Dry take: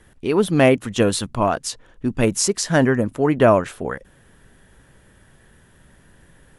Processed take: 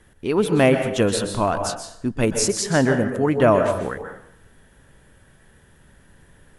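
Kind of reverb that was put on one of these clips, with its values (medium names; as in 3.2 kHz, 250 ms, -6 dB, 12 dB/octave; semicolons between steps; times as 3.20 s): plate-style reverb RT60 0.69 s, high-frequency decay 0.7×, pre-delay 115 ms, DRR 6 dB; trim -2 dB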